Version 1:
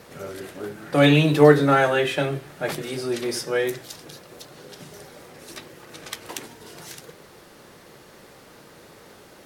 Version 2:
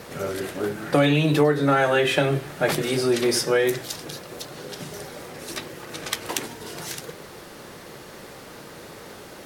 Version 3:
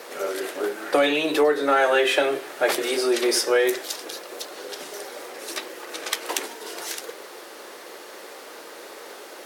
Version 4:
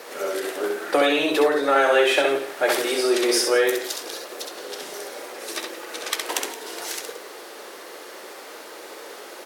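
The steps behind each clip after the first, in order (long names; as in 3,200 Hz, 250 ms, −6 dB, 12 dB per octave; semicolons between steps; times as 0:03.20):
downward compressor 8 to 1, threshold −22 dBFS, peak gain reduction 14.5 dB; level +6.5 dB
high-pass filter 340 Hz 24 dB per octave; in parallel at −8 dB: soft clipping −16 dBFS, distortion −15 dB; on the sum: level −1 dB
low-shelf EQ 84 Hz −5.5 dB; on a send: multi-tap delay 66/171 ms −4.5/−15 dB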